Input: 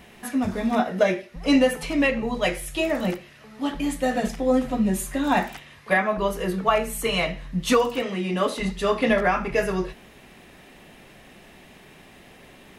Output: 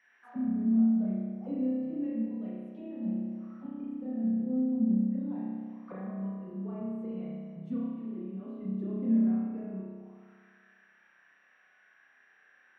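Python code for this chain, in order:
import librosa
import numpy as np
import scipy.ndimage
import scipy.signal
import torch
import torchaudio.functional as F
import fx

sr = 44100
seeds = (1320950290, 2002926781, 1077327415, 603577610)

y = x + 10.0 ** (-50.0 / 20.0) * np.sin(2.0 * np.pi * 5700.0 * np.arange(len(x)) / sr)
y = fx.auto_wah(y, sr, base_hz=220.0, top_hz=1900.0, q=6.5, full_db=-22.5, direction='down')
y = fx.rev_spring(y, sr, rt60_s=1.7, pass_ms=(31,), chirp_ms=20, drr_db=-5.5)
y = F.gain(torch.from_numpy(y), -8.5).numpy()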